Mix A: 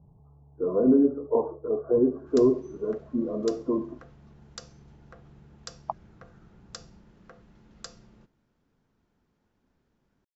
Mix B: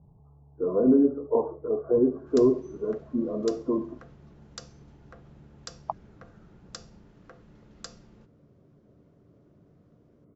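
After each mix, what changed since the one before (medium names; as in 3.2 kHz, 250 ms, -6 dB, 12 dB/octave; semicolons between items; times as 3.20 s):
first sound: unmuted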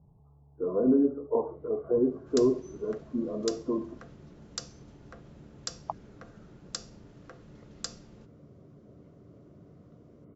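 speech -3.5 dB; first sound +5.5 dB; master: add treble shelf 3.8 kHz +8.5 dB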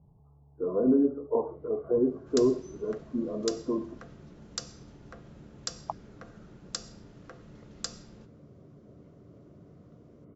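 reverb: on, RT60 1.1 s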